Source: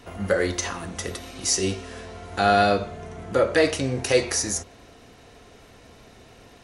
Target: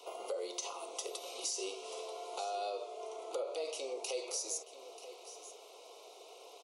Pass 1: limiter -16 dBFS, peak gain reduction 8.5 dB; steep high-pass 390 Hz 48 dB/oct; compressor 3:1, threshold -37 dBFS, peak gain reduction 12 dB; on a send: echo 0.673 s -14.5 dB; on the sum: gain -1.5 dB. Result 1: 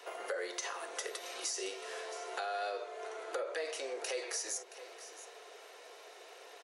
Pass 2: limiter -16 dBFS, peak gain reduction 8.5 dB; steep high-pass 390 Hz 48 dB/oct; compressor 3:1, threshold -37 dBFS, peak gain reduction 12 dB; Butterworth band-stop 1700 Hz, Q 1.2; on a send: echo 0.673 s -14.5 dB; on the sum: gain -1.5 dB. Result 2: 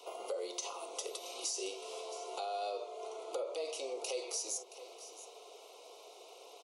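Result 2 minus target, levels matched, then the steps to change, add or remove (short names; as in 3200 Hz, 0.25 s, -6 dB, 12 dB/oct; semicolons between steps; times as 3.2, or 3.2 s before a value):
echo 0.263 s early
change: echo 0.936 s -14.5 dB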